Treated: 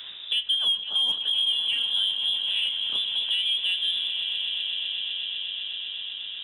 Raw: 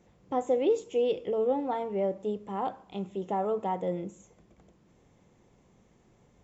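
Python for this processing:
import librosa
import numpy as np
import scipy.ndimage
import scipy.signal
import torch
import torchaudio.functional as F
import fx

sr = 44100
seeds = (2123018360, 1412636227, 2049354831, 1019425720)

p1 = fx.freq_invert(x, sr, carrier_hz=3700)
p2 = fx.low_shelf(p1, sr, hz=160.0, db=4.0)
p3 = fx.echo_swell(p2, sr, ms=126, loudest=5, wet_db=-14.0)
p4 = 10.0 ** (-26.0 / 20.0) * np.tanh(p3 / 10.0 ** (-26.0 / 20.0))
p5 = p3 + (p4 * 10.0 ** (-5.5 / 20.0))
p6 = fx.low_shelf(p5, sr, hz=480.0, db=-5.0)
y = fx.band_squash(p6, sr, depth_pct=70)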